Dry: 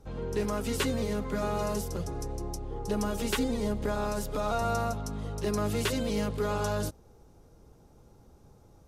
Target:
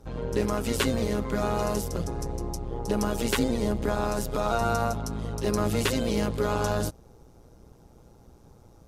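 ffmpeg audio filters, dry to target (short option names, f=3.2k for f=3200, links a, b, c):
-af "tremolo=f=120:d=0.667,volume=6.5dB"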